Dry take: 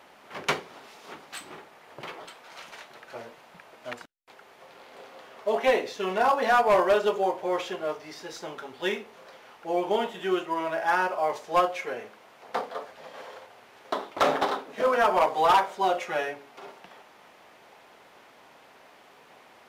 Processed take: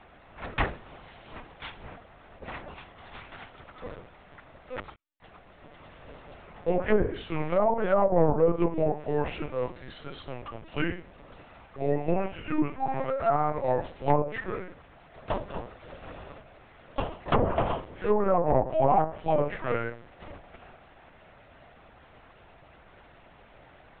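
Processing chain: varispeed -18%; LPC vocoder at 8 kHz pitch kept; treble ducked by the level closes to 840 Hz, closed at -17.5 dBFS

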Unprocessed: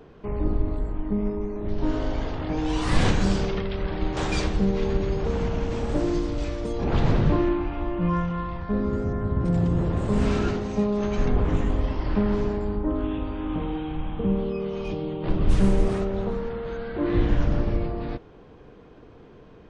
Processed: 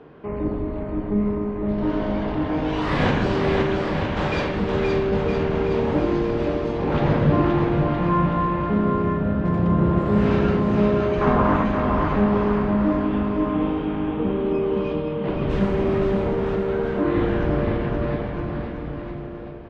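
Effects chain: LPF 2800 Hz 12 dB/oct; 11.21–11.64 bell 1100 Hz +13.5 dB 1.2 oct; HPF 190 Hz 6 dB/oct; bouncing-ball echo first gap 0.52 s, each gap 0.85×, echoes 5; on a send at -5 dB: reverb RT60 0.65 s, pre-delay 12 ms; on the sum: gain +3.5 dB

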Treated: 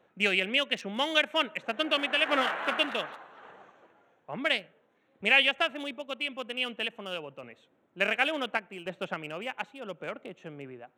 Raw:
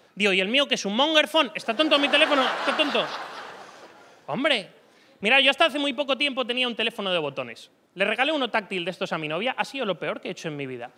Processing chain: Wiener smoothing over 9 samples; random-step tremolo; dynamic EQ 2100 Hz, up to +7 dB, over -39 dBFS, Q 1.1; gain -6.5 dB

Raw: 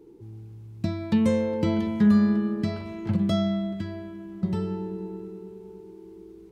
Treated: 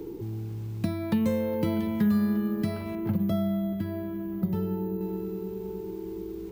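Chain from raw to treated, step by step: 2.95–5.01 high shelf 2000 Hz -12 dB; careless resampling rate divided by 3×, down none, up hold; three-band squash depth 70%; gain -2 dB

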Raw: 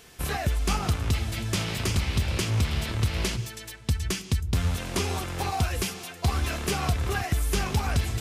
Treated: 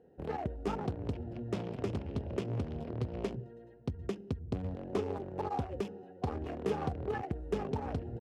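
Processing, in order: Wiener smoothing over 41 samples; band-pass 440 Hz, Q 0.9; pitch shift +1 st

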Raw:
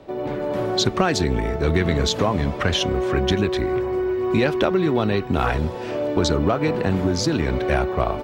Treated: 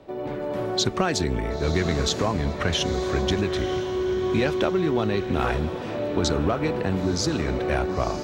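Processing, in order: diffused feedback echo 0.982 s, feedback 42%, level -10 dB; dynamic EQ 7100 Hz, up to +4 dB, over -39 dBFS, Q 1.1; gain -4 dB

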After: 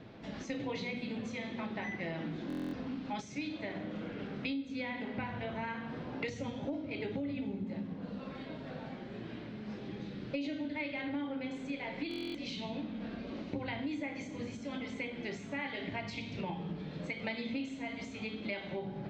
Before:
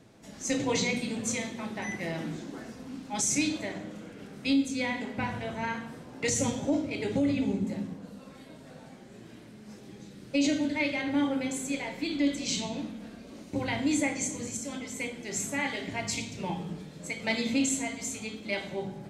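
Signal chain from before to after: compressor 6:1, threshold -41 dBFS, peak gain reduction 18 dB; LPF 4000 Hz 24 dB/oct; stuck buffer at 2.48/12.09, samples 1024, times 10; gain +5 dB

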